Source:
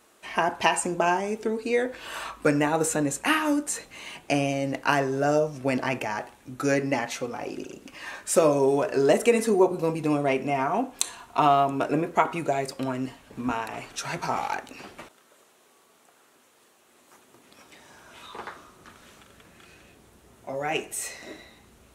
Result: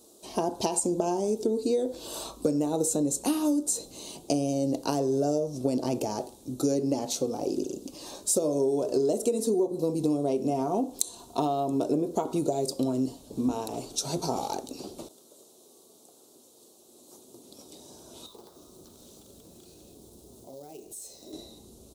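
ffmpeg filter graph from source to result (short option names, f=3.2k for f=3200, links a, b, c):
-filter_complex "[0:a]asettb=1/sr,asplit=3[a][b][c];[a]atrim=end=18.264[d];[b]atrim=start=18.26:end=21.33,asetpts=PTS-STARTPTS,afade=t=in:d=0.004:c=qsin,afade=t=out:st=3.066:d=0.004:c=qsin,acompressor=threshold=-51dB:ratio=3:attack=3.2:release=140:knee=1:detection=peak,acrusher=bits=3:mode=log:mix=0:aa=0.000001[e];[c]atrim=start=21.326[f];[d][e]acrossfade=d=0.004:c1=hsin:c2=qsin[g];[g][f]acrossfade=d=0.004:c1=qsin:c2=hsin,firequalizer=gain_entry='entry(120,0);entry(340,6);entry(1800,-23);entry(3800,5)':delay=0.05:min_phase=1,acompressor=threshold=-24dB:ratio=10,equalizer=f=2.3k:t=o:w=2.1:g=-4,volume=2dB"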